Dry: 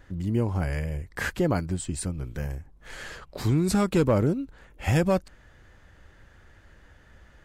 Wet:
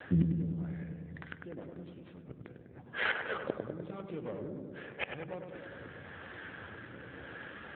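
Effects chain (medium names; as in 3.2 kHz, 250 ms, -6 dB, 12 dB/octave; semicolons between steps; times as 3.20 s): tracing distortion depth 0.3 ms; high-pass 250 Hz 6 dB/octave; hum notches 50/100/150/200/250/300/350/400 Hz; in parallel at -3 dB: peak limiter -23 dBFS, peak gain reduction 10.5 dB; on the sum: tape speed -4%; inverted gate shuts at -26 dBFS, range -30 dB; rotary cabinet horn 0.9 Hz; on a send: filtered feedback delay 100 ms, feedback 78%, low-pass 1.7 kHz, level -5 dB; on the sum: trim +11.5 dB; AMR-NB 7.4 kbps 8 kHz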